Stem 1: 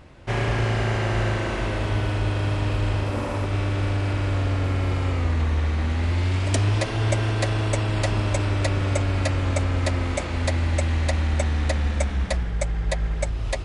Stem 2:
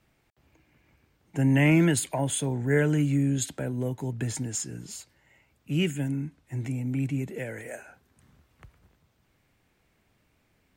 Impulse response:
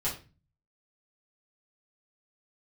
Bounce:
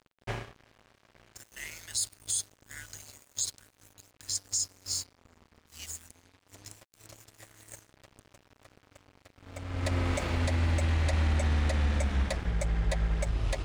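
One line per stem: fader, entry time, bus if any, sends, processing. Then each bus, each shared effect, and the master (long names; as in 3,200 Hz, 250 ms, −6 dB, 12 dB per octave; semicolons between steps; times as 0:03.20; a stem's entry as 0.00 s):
−1.0 dB, 0.00 s, no send, mains-hum notches 60/120/180/240/300/360 Hz; automatic ducking −22 dB, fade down 0.30 s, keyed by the second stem
−2.5 dB, 0.00 s, no send, Chebyshev high-pass with heavy ripple 1,400 Hz, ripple 6 dB; high shelf with overshoot 3,300 Hz +11 dB, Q 3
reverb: not used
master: dead-zone distortion −42 dBFS; brickwall limiter −19.5 dBFS, peak gain reduction 11 dB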